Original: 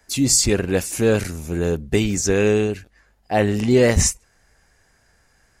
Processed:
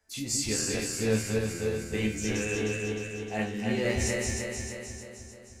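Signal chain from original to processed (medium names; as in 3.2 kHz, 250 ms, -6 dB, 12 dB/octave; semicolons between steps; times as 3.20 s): backward echo that repeats 154 ms, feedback 76%, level -2 dB; dynamic bell 2.3 kHz, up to +6 dB, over -39 dBFS, Q 1.4; chord resonator D2 fifth, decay 0.26 s; trim -5 dB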